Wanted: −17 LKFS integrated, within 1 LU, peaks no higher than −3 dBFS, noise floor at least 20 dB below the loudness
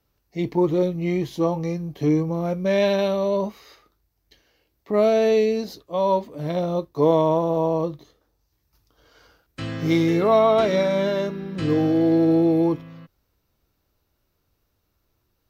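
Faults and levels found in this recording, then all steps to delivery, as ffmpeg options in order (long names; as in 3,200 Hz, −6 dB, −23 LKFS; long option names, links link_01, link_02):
integrated loudness −21.5 LKFS; sample peak −6.0 dBFS; target loudness −17.0 LKFS
→ -af "volume=4.5dB,alimiter=limit=-3dB:level=0:latency=1"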